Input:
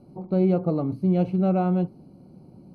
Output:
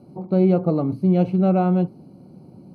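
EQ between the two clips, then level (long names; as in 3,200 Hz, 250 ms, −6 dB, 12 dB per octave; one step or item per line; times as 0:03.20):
high-pass filter 82 Hz
+4.0 dB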